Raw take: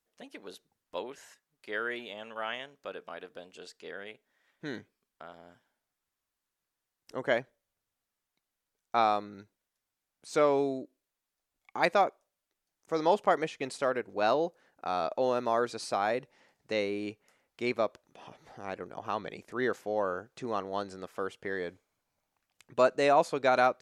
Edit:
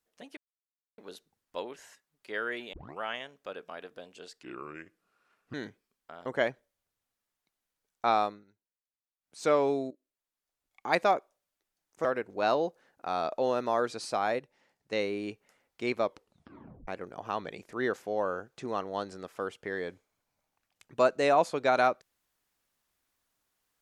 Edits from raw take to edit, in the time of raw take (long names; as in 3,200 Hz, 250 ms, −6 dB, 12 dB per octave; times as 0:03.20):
0:00.37: splice in silence 0.61 s
0:02.12: tape start 0.28 s
0:03.82–0:04.65: play speed 75%
0:05.37–0:07.16: remove
0:09.14–0:10.30: duck −17.5 dB, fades 0.21 s
0:10.81–0:11.82: fade in, from −13.5 dB
0:12.95–0:13.84: remove
0:16.18–0:16.72: clip gain −5.5 dB
0:17.84: tape stop 0.83 s